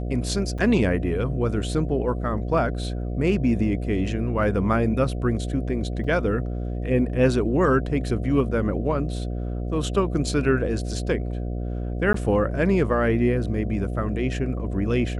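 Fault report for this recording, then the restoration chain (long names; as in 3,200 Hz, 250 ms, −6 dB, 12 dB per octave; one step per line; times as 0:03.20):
mains buzz 60 Hz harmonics 12 −28 dBFS
0:00.58–0:00.59: drop-out 5.6 ms
0:06.04: drop-out 4.6 ms
0:12.13–0:12.14: drop-out 13 ms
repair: hum removal 60 Hz, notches 12
repair the gap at 0:00.58, 5.6 ms
repair the gap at 0:06.04, 4.6 ms
repair the gap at 0:12.13, 13 ms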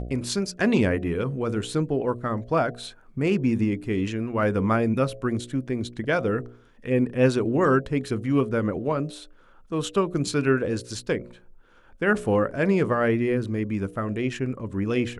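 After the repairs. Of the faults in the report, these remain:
none of them is left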